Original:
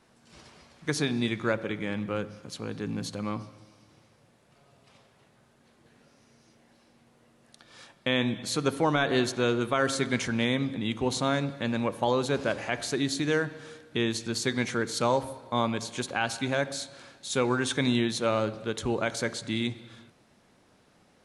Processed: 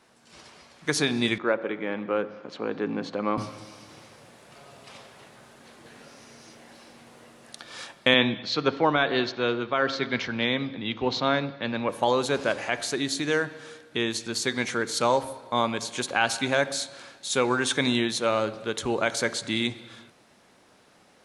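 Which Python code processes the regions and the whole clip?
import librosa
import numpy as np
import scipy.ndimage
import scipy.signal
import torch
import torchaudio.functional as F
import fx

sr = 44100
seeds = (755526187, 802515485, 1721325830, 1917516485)

y = fx.chain(x, sr, fx.highpass(hz=270.0, slope=12),
    fx.spacing_loss(db_at_10k=36), at=(1.38, 3.38))
y = fx.chain(y, sr, fx.steep_lowpass(hz=5000.0, slope=36),
    fx.band_widen(depth_pct=40), at=(8.14, 11.89))
y = fx.low_shelf(y, sr, hz=230.0, db=-10.0)
y = fx.rider(y, sr, range_db=10, speed_s=2.0)
y = y * librosa.db_to_amplitude(4.0)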